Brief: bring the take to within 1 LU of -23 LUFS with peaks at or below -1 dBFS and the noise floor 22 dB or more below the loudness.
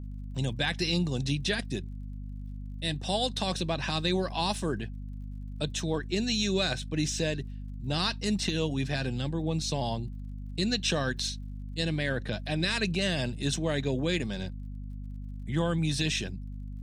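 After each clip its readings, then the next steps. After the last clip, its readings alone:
ticks 43/s; hum 50 Hz; harmonics up to 250 Hz; hum level -36 dBFS; loudness -30.5 LUFS; peak -14.5 dBFS; loudness target -23.0 LUFS
-> de-click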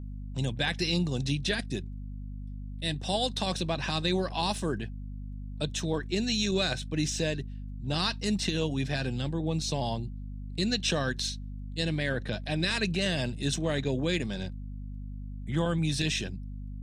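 ticks 0.12/s; hum 50 Hz; harmonics up to 250 Hz; hum level -36 dBFS
-> de-hum 50 Hz, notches 5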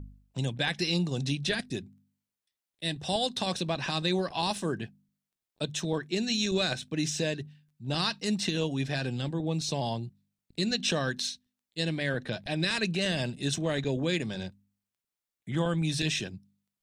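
hum none; loudness -30.5 LUFS; peak -14.5 dBFS; loudness target -23.0 LUFS
-> gain +7.5 dB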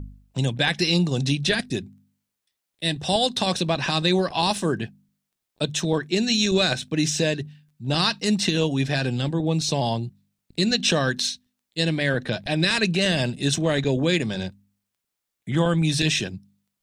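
loudness -23.0 LUFS; peak -7.0 dBFS; noise floor -82 dBFS

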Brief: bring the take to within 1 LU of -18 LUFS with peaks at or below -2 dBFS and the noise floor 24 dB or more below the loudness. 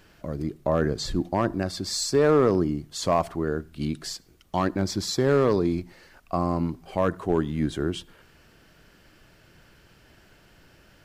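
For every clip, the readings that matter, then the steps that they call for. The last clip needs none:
clipped 0.3%; flat tops at -12.5 dBFS; loudness -26.0 LUFS; peak -12.5 dBFS; loudness target -18.0 LUFS
-> clip repair -12.5 dBFS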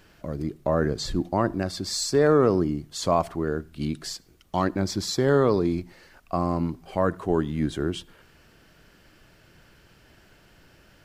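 clipped 0.0%; loudness -25.5 LUFS; peak -8.5 dBFS; loudness target -18.0 LUFS
-> gain +7.5 dB; limiter -2 dBFS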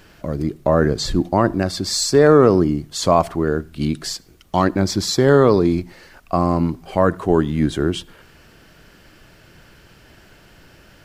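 loudness -18.0 LUFS; peak -2.0 dBFS; noise floor -49 dBFS

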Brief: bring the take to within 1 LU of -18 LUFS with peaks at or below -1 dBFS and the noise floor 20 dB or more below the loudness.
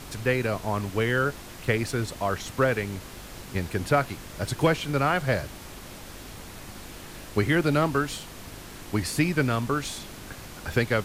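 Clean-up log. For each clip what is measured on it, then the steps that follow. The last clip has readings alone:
hum 50 Hz; harmonics up to 350 Hz; hum level -49 dBFS; noise floor -43 dBFS; noise floor target -47 dBFS; loudness -27.0 LUFS; peak -10.0 dBFS; loudness target -18.0 LUFS
-> de-hum 50 Hz, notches 7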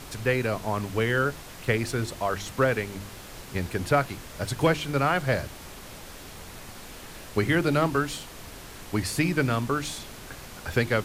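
hum none; noise floor -43 dBFS; noise floor target -47 dBFS
-> noise print and reduce 6 dB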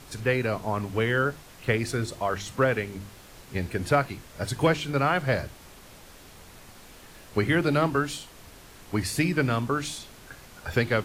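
noise floor -49 dBFS; loudness -27.0 LUFS; peak -10.5 dBFS; loudness target -18.0 LUFS
-> gain +9 dB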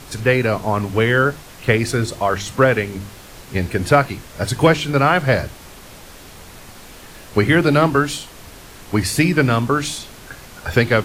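loudness -18.0 LUFS; peak -1.5 dBFS; noise floor -40 dBFS

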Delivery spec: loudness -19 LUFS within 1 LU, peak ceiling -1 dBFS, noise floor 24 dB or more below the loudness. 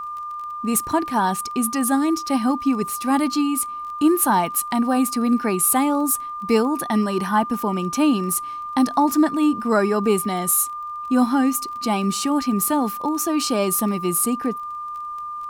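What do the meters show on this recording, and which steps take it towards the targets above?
ticks 19/s; steady tone 1200 Hz; tone level -28 dBFS; loudness -21.0 LUFS; peak -6.0 dBFS; loudness target -19.0 LUFS
-> de-click; notch 1200 Hz, Q 30; gain +2 dB

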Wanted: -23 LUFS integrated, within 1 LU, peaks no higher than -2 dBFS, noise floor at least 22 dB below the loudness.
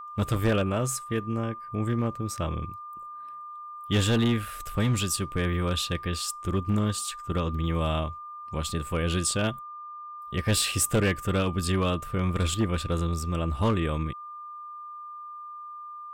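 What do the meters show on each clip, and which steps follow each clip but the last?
clipped 0.7%; flat tops at -17.5 dBFS; steady tone 1200 Hz; tone level -38 dBFS; loudness -28.0 LUFS; peak -17.5 dBFS; loudness target -23.0 LUFS
-> clip repair -17.5 dBFS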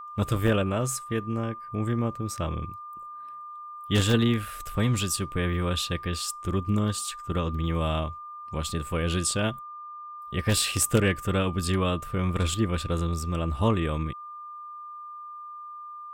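clipped 0.0%; steady tone 1200 Hz; tone level -38 dBFS
-> notch 1200 Hz, Q 30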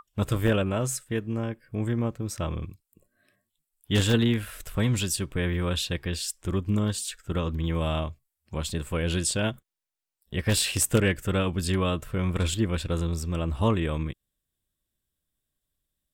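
steady tone none; loudness -27.5 LUFS; peak -8.5 dBFS; loudness target -23.0 LUFS
-> gain +4.5 dB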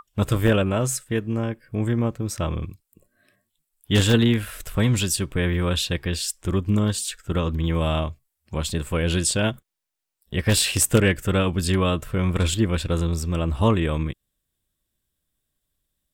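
loudness -23.0 LUFS; peak -4.0 dBFS; noise floor -79 dBFS

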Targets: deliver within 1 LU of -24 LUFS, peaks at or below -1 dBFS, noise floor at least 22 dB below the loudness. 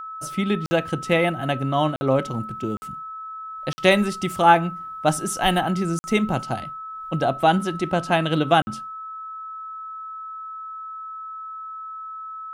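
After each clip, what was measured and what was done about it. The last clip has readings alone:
dropouts 6; longest dropout 50 ms; steady tone 1300 Hz; tone level -32 dBFS; loudness -22.5 LUFS; peak -2.5 dBFS; loudness target -24.0 LUFS
-> interpolate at 0.66/1.96/2.77/3.73/5.99/8.62, 50 ms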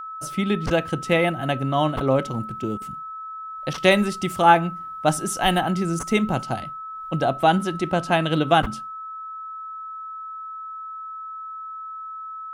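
dropouts 0; steady tone 1300 Hz; tone level -32 dBFS
-> notch 1300 Hz, Q 30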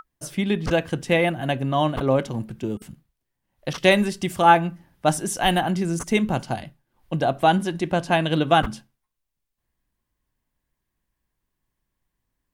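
steady tone none; loudness -22.5 LUFS; peak -3.0 dBFS; loudness target -24.0 LUFS
-> gain -1.5 dB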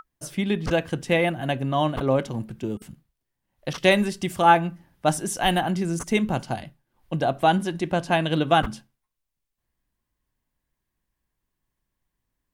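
loudness -24.0 LUFS; peak -4.5 dBFS; noise floor -82 dBFS

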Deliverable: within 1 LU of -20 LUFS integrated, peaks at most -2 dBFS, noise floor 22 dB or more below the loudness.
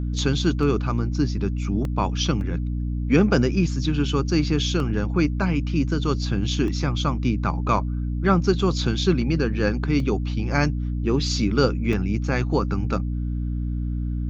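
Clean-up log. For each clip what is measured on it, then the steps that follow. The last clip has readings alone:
dropouts 7; longest dropout 1.3 ms; hum 60 Hz; harmonics up to 300 Hz; hum level -23 dBFS; loudness -23.0 LUFS; peak -4.5 dBFS; loudness target -20.0 LUFS
-> interpolate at 0.63/1.85/2.41/4.8/6.68/10/11.93, 1.3 ms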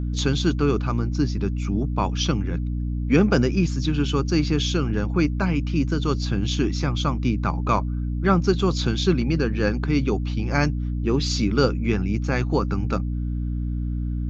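dropouts 0; hum 60 Hz; harmonics up to 300 Hz; hum level -23 dBFS
-> notches 60/120/180/240/300 Hz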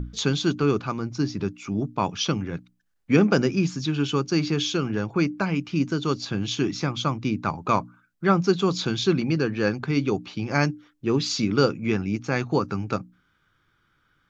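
hum none; loudness -25.0 LUFS; peak -6.0 dBFS; loudness target -20.0 LUFS
-> gain +5 dB; limiter -2 dBFS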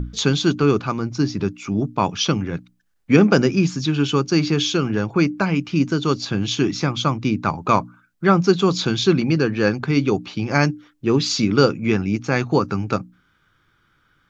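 loudness -20.0 LUFS; peak -2.0 dBFS; noise floor -63 dBFS

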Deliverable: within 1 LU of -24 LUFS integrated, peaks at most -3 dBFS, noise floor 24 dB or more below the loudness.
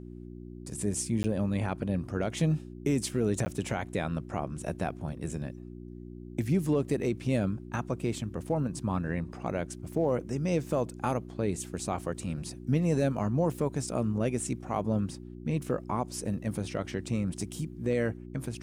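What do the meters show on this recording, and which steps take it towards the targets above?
dropouts 2; longest dropout 10 ms; hum 60 Hz; harmonics up to 360 Hz; hum level -42 dBFS; loudness -31.5 LUFS; peak -17.0 dBFS; loudness target -24.0 LUFS
-> interpolate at 1.23/3.45, 10 ms; de-hum 60 Hz, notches 6; gain +7.5 dB

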